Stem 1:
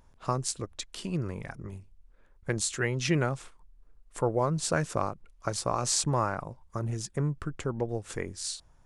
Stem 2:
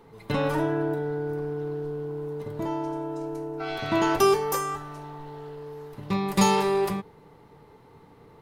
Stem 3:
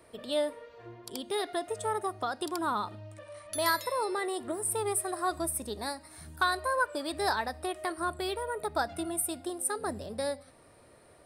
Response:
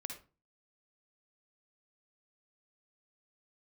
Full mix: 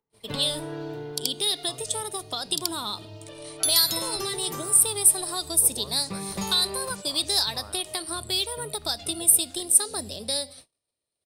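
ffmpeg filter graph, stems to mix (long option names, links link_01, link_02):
-filter_complex "[0:a]adelay=1400,volume=-15dB[link_01];[1:a]acompressor=mode=upward:threshold=-41dB:ratio=2.5,volume=4.5dB,afade=type=out:start_time=0.99:duration=0.52:silence=0.251189,afade=type=in:start_time=3.13:duration=0.61:silence=0.298538[link_02];[2:a]highshelf=frequency=2400:width_type=q:width=1.5:gain=12.5,adelay=100,volume=1.5dB[link_03];[link_01][link_02][link_03]amix=inputs=3:normalize=0,agate=range=-35dB:threshold=-46dB:ratio=16:detection=peak,acrossover=split=150|3000[link_04][link_05][link_06];[link_05]acompressor=threshold=-31dB:ratio=6[link_07];[link_04][link_07][link_06]amix=inputs=3:normalize=0"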